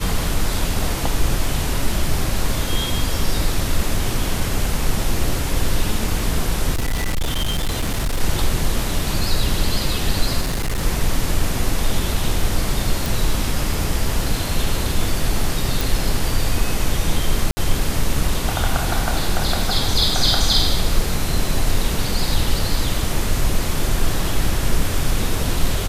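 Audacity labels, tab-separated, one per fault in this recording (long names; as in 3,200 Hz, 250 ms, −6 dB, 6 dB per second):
6.720000	8.200000	clipping −16.5 dBFS
10.410000	10.840000	clipping −17.5 dBFS
13.060000	13.060000	click
15.810000	15.810000	click
17.510000	17.570000	drop-out 60 ms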